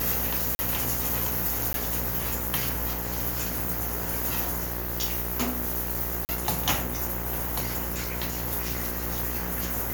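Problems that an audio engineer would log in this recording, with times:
buzz 60 Hz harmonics 35 -34 dBFS
0.55–0.59 s: dropout 40 ms
1.73–1.74 s: dropout 12 ms
6.25–6.29 s: dropout 39 ms

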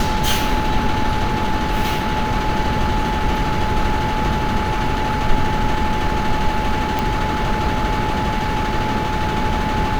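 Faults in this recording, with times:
whine 860 Hz -23 dBFS
6.99 s: pop

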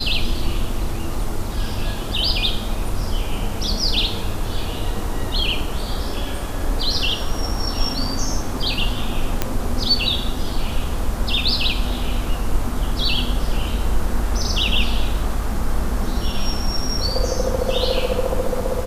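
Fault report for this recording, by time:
9.42 s: pop -4 dBFS

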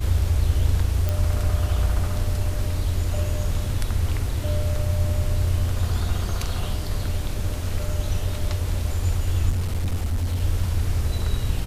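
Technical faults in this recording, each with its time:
1.09 s: pop
9.49–10.41 s: clipped -20 dBFS

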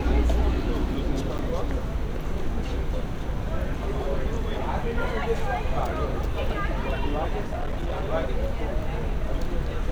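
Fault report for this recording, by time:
1.38–1.39 s: dropout 9.1 ms
7.47–8.03 s: clipped -23.5 dBFS

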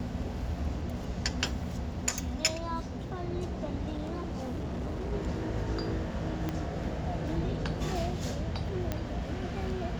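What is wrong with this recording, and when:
3.91–5.13 s: clipped -31.5 dBFS
6.49 s: pop -19 dBFS
8.92 s: pop -17 dBFS

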